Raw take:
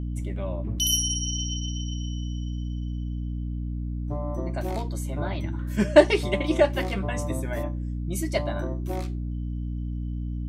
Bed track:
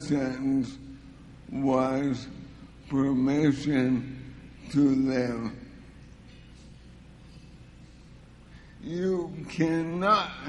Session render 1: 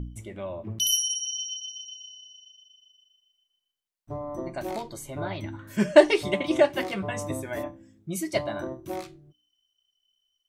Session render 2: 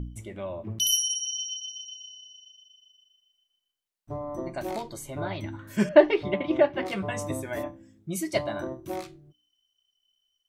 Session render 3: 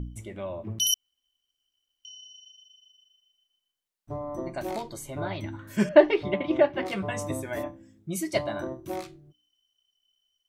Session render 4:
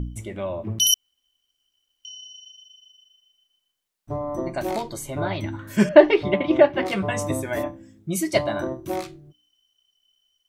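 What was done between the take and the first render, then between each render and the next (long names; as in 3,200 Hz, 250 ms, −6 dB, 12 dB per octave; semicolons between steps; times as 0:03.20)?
hum removal 60 Hz, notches 5
0:05.89–0:06.86: high-frequency loss of the air 340 metres
0:00.94–0:02.05: fill with room tone
level +6 dB; brickwall limiter −1 dBFS, peak gain reduction 2 dB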